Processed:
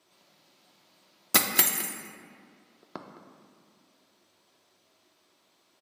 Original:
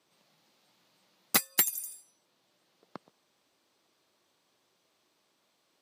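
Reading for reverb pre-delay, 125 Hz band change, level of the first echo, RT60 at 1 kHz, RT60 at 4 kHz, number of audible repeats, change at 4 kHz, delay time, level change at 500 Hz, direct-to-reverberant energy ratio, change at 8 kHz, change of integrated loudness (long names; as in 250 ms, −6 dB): 3 ms, +5.5 dB, −15.5 dB, 2.1 s, 1.1 s, 1, +5.5 dB, 212 ms, +6.5 dB, 1.5 dB, +5.0 dB, +5.0 dB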